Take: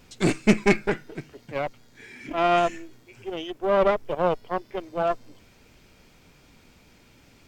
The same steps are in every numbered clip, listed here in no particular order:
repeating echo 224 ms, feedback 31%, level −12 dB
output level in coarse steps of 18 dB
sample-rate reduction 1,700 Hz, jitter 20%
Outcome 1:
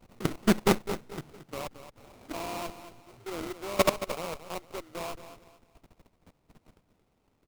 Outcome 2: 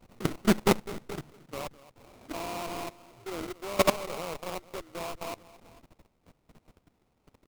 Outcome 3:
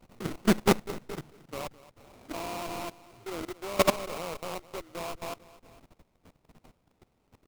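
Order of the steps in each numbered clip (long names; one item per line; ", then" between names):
output level in coarse steps, then sample-rate reduction, then repeating echo
repeating echo, then output level in coarse steps, then sample-rate reduction
sample-rate reduction, then repeating echo, then output level in coarse steps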